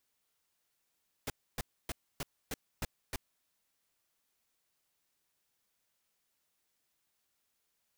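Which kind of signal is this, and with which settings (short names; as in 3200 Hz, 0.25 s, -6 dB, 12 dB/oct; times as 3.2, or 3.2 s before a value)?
noise bursts pink, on 0.03 s, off 0.28 s, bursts 7, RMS -36.5 dBFS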